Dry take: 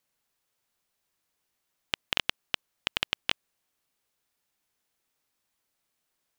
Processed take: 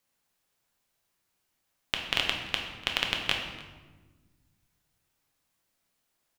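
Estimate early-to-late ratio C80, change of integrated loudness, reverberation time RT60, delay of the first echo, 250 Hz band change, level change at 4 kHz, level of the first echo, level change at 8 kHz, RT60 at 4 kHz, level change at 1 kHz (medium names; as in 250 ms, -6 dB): 6.5 dB, +2.0 dB, 1.3 s, 293 ms, +3.5 dB, +2.0 dB, -20.5 dB, +2.0 dB, 0.90 s, +2.5 dB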